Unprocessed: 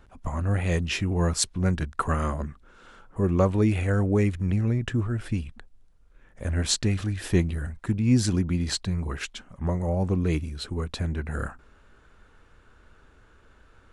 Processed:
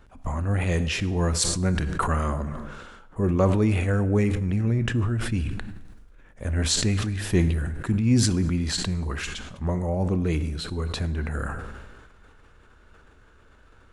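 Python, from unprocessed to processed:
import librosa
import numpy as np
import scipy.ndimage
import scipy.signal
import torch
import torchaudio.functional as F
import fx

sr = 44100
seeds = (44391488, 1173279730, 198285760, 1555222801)

y = fx.rev_plate(x, sr, seeds[0], rt60_s=1.1, hf_ratio=0.75, predelay_ms=0, drr_db=13.0)
y = fx.sustainer(y, sr, db_per_s=35.0)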